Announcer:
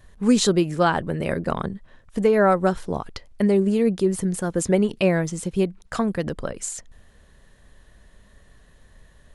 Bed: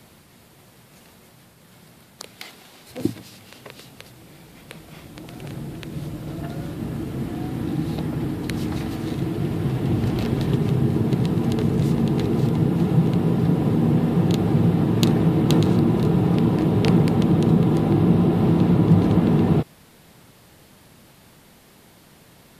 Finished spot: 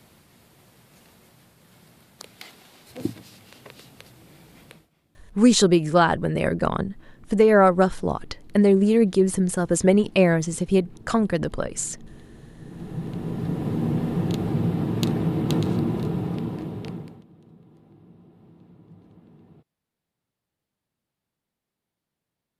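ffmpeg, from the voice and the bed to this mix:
-filter_complex "[0:a]adelay=5150,volume=2dB[a];[1:a]volume=16.5dB,afade=t=out:st=4.63:d=0.26:silence=0.0794328,afade=t=in:st=12.57:d=1.26:silence=0.0891251,afade=t=out:st=15.81:d=1.43:silence=0.0354813[b];[a][b]amix=inputs=2:normalize=0"

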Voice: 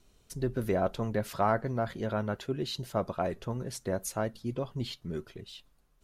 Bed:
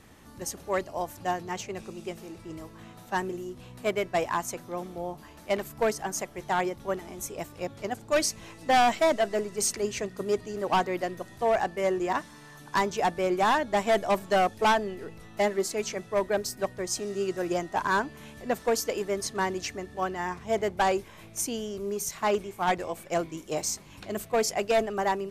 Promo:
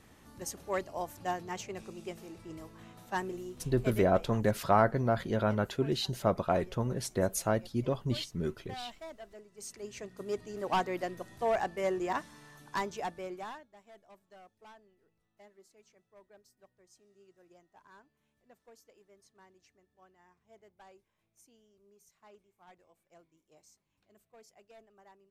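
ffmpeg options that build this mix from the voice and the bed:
-filter_complex "[0:a]adelay=3300,volume=2.5dB[a];[1:a]volume=13dB,afade=t=out:st=3.56:d=0.62:silence=0.125893,afade=t=in:st=9.51:d=1.27:silence=0.125893,afade=t=out:st=12.36:d=1.32:silence=0.0421697[b];[a][b]amix=inputs=2:normalize=0"

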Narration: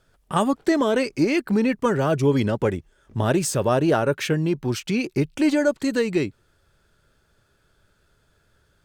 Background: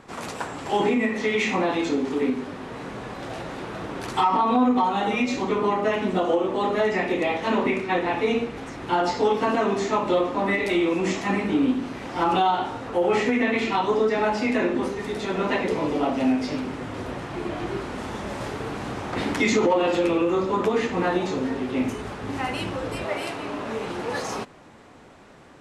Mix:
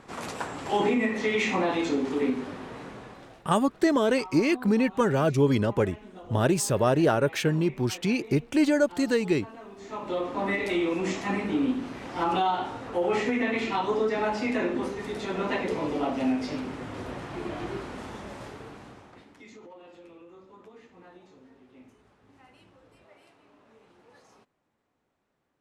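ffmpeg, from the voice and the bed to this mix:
-filter_complex "[0:a]adelay=3150,volume=-2.5dB[a];[1:a]volume=15.5dB,afade=t=out:st=2.5:d=0.92:silence=0.1,afade=t=in:st=9.77:d=0.67:silence=0.125893,afade=t=out:st=17.63:d=1.62:silence=0.0630957[b];[a][b]amix=inputs=2:normalize=0"

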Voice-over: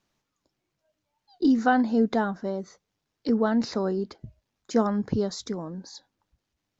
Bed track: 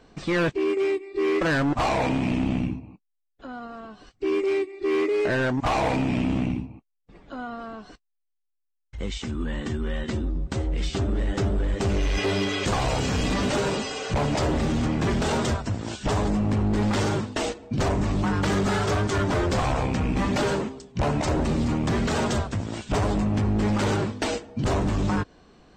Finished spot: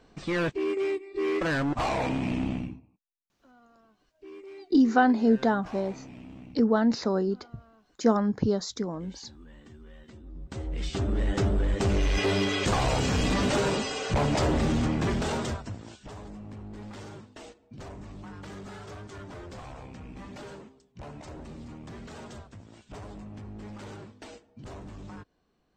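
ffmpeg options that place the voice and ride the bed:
-filter_complex "[0:a]adelay=3300,volume=0.5dB[a];[1:a]volume=15.5dB,afade=t=out:st=2.45:d=0.45:silence=0.149624,afade=t=in:st=10.23:d=1.05:silence=0.1,afade=t=out:st=14.71:d=1.37:silence=0.125893[b];[a][b]amix=inputs=2:normalize=0"

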